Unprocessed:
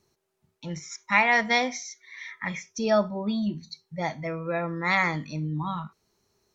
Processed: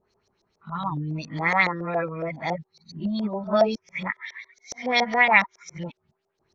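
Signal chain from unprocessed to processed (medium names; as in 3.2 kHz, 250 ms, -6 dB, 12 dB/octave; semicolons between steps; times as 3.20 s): reverse the whole clip; vibrato 1.8 Hz 37 cents; LFO low-pass saw up 7.2 Hz 550–6100 Hz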